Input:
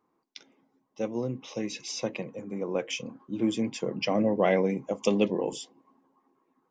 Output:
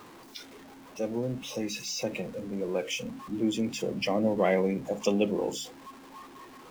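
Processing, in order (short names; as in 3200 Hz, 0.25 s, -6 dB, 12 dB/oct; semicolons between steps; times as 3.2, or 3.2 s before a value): zero-crossing step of -34 dBFS; spectral noise reduction 8 dB; de-hum 70.12 Hz, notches 4; gain -2 dB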